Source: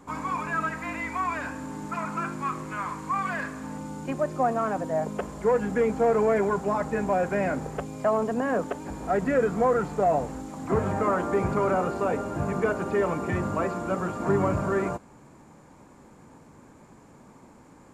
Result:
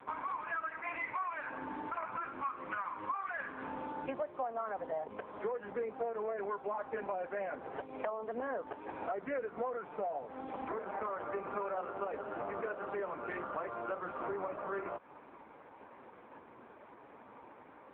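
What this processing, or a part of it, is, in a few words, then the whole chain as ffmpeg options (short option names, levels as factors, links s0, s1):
voicemail: -af "highpass=430,lowpass=3100,acompressor=threshold=0.0126:ratio=12,volume=1.68" -ar 8000 -c:a libopencore_amrnb -b:a 4750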